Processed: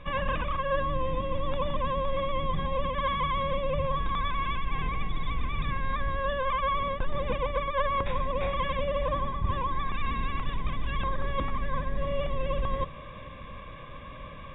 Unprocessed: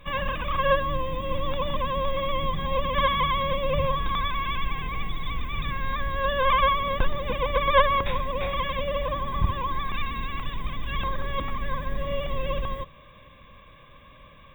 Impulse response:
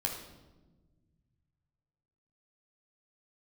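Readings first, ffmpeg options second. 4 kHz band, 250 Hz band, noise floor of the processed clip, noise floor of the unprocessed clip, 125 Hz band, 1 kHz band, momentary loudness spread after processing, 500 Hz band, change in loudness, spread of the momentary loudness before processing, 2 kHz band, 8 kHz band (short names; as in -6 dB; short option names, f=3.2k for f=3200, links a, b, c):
-7.5 dB, -1.0 dB, -43 dBFS, -50 dBFS, -1.5 dB, -4.0 dB, 6 LU, -3.0 dB, -3.5 dB, 10 LU, -5.5 dB, n/a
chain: -af "areverse,acompressor=threshold=-33dB:ratio=6,areverse,aemphasis=mode=reproduction:type=75fm,volume=7.5dB"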